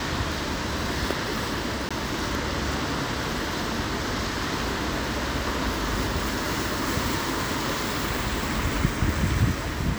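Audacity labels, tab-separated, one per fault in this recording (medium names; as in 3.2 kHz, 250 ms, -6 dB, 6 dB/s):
1.890000	1.910000	dropout 16 ms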